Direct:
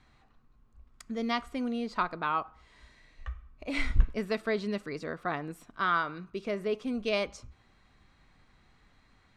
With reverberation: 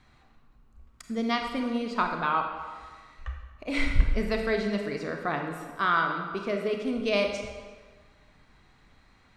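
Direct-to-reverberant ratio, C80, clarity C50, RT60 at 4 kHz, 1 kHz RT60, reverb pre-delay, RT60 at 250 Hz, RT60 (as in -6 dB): 3.0 dB, 6.5 dB, 4.5 dB, 1.2 s, 1.5 s, 28 ms, 1.4 s, 1.5 s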